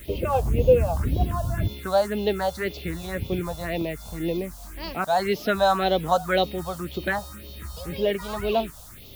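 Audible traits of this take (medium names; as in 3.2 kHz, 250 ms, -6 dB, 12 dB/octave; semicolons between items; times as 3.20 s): a quantiser's noise floor 8-bit, dither triangular; phasing stages 4, 1.9 Hz, lowest notch 330–1600 Hz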